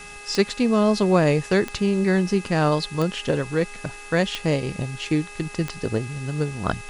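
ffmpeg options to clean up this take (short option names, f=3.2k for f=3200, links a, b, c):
-af "adeclick=t=4,bandreject=f=410.5:t=h:w=4,bandreject=f=821:t=h:w=4,bandreject=f=1.2315k:t=h:w=4,bandreject=f=1.642k:t=h:w=4,bandreject=f=2.0525k:t=h:w=4,bandreject=f=2.6k:w=30,afwtdn=0.0063"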